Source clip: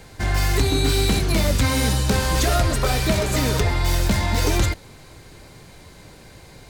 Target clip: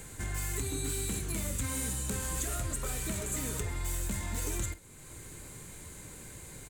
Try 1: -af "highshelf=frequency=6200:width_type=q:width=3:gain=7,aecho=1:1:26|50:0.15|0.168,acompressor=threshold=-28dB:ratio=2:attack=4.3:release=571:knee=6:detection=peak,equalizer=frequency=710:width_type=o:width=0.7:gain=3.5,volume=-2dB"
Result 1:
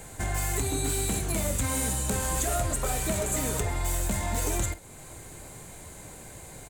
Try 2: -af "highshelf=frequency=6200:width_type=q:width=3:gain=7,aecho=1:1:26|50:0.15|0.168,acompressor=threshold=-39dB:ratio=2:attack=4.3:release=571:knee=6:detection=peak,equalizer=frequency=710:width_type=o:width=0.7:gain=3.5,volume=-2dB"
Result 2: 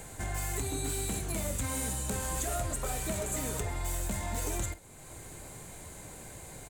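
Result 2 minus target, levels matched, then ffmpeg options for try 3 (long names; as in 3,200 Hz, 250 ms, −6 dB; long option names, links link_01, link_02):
1,000 Hz band +5.0 dB
-af "highshelf=frequency=6200:width_type=q:width=3:gain=7,aecho=1:1:26|50:0.15|0.168,acompressor=threshold=-39dB:ratio=2:attack=4.3:release=571:knee=6:detection=peak,equalizer=frequency=710:width_type=o:width=0.7:gain=-7,volume=-2dB"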